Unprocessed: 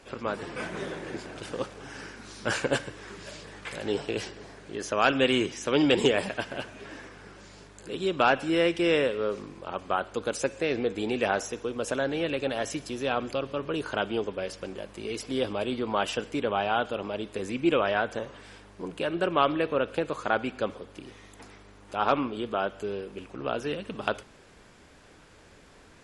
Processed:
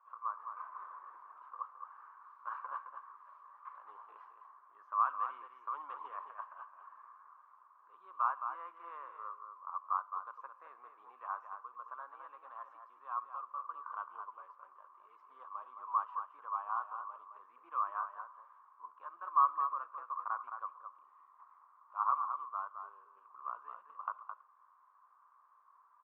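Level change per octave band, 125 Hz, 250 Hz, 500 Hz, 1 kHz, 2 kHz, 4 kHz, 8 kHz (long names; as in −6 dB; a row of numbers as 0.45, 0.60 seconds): below −40 dB, below −40 dB, −33.5 dB, −4.5 dB, −21.0 dB, below −40 dB, below −35 dB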